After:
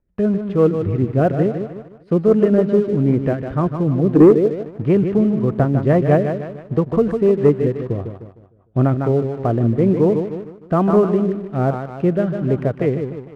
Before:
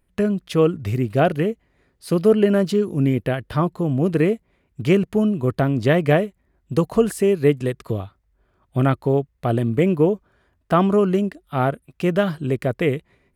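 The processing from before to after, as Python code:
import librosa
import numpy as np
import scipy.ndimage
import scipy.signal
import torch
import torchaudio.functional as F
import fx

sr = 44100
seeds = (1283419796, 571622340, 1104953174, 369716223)

y = scipy.signal.sosfilt(scipy.signal.butter(2, 1300.0, 'lowpass', fs=sr, output='sos'), x)
y = fx.echo_feedback(y, sr, ms=152, feedback_pct=48, wet_db=-8.0)
y = fx.rotary_switch(y, sr, hz=6.0, then_hz=1.2, switch_at_s=8.57)
y = fx.peak_eq(y, sr, hz=fx.line((4.15, 280.0), (4.9, 1000.0)), db=11.5, octaves=0.93, at=(4.15, 4.9), fade=0.02)
y = fx.leveller(y, sr, passes=1)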